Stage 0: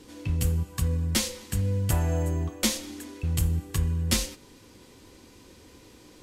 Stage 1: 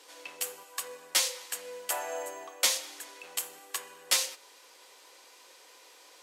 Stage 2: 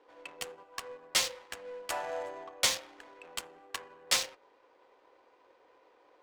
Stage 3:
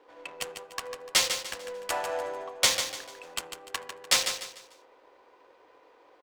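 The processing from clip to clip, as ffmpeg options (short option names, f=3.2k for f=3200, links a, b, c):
-af "highpass=f=570:w=0.5412,highpass=f=570:w=1.3066,volume=1.5dB"
-af "adynamicsmooth=sensitivity=8:basefreq=980"
-af "aecho=1:1:148|296|444|592:0.398|0.131|0.0434|0.0143,volume=4.5dB"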